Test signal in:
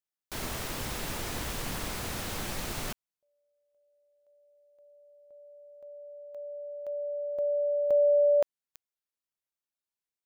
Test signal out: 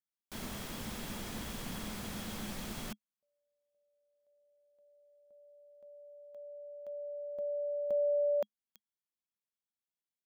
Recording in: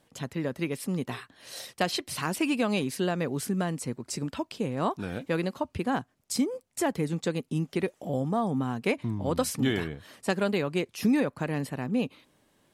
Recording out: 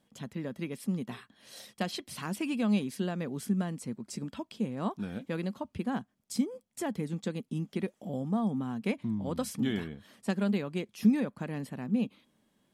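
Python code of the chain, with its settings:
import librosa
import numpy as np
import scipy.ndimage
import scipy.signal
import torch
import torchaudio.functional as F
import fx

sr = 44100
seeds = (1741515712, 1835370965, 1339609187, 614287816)

y = fx.small_body(x, sr, hz=(210.0, 3300.0), ring_ms=70, db=12)
y = y * librosa.db_to_amplitude(-8.0)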